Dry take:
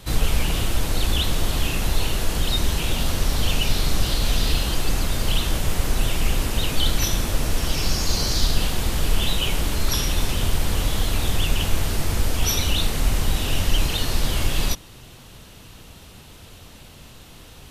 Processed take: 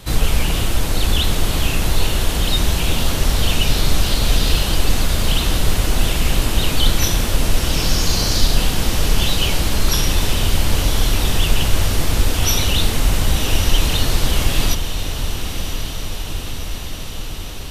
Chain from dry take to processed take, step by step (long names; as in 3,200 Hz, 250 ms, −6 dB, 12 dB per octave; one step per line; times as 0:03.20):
on a send: feedback delay with all-pass diffusion 1,094 ms, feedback 70%, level −8.5 dB
on the sum: level +4 dB